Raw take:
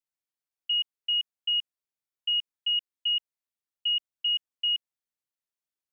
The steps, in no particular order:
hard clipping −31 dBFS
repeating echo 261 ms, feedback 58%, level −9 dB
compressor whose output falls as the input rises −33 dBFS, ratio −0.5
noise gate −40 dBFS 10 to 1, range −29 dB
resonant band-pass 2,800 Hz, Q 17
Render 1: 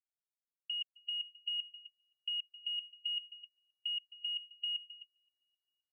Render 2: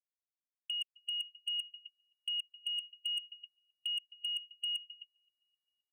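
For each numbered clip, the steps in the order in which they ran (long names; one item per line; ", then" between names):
hard clipping, then compressor whose output falls as the input rises, then repeating echo, then noise gate, then resonant band-pass
resonant band-pass, then compressor whose output falls as the input rises, then repeating echo, then noise gate, then hard clipping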